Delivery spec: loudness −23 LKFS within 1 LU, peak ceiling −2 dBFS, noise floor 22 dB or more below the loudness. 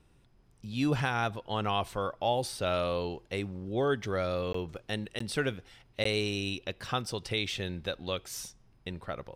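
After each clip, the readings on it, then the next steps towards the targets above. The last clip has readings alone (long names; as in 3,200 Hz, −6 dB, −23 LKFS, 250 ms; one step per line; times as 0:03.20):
number of dropouts 3; longest dropout 14 ms; integrated loudness −33.0 LKFS; sample peak −16.5 dBFS; target loudness −23.0 LKFS
→ repair the gap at 0:04.53/0:05.19/0:06.04, 14 ms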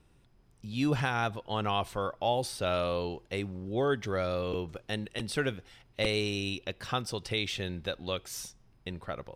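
number of dropouts 0; integrated loudness −32.5 LKFS; sample peak −16.0 dBFS; target loudness −23.0 LKFS
→ level +9.5 dB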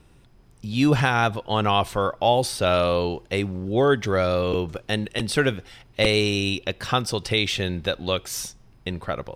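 integrated loudness −23.0 LKFS; sample peak −6.5 dBFS; background noise floor −54 dBFS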